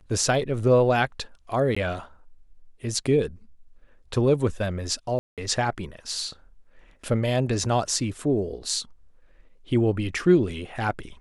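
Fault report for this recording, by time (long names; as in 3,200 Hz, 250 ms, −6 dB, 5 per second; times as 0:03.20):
0:01.75–0:01.76: drop-out 15 ms
0:05.19–0:05.38: drop-out 187 ms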